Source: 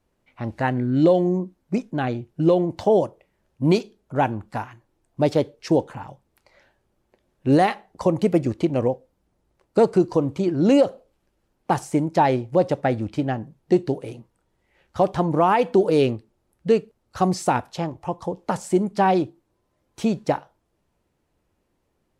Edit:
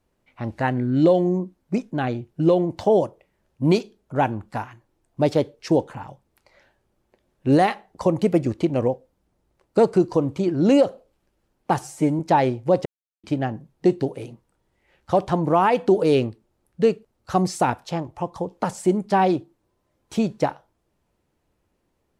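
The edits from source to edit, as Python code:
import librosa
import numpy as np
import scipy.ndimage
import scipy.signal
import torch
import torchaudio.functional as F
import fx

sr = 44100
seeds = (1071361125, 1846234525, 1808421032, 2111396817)

y = fx.edit(x, sr, fx.stretch_span(start_s=11.79, length_s=0.27, factor=1.5),
    fx.silence(start_s=12.72, length_s=0.38), tone=tone)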